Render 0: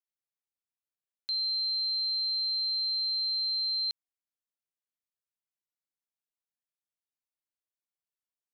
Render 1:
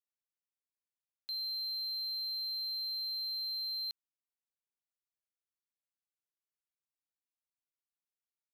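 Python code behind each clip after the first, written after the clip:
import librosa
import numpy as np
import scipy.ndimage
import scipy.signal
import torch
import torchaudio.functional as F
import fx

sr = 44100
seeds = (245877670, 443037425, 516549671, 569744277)

y = fx.leveller(x, sr, passes=1)
y = F.gain(torch.from_numpy(y), -8.0).numpy()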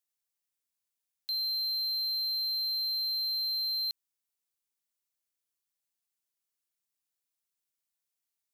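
y = fx.high_shelf(x, sr, hz=3500.0, db=10.0)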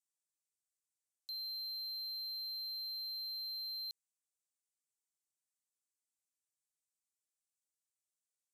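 y = fx.bandpass_q(x, sr, hz=7800.0, q=2.1)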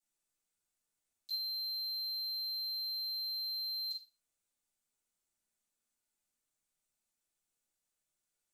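y = fx.room_shoebox(x, sr, seeds[0], volume_m3=420.0, walls='furnished', distance_m=7.6)
y = F.gain(torch.from_numpy(y), -4.5).numpy()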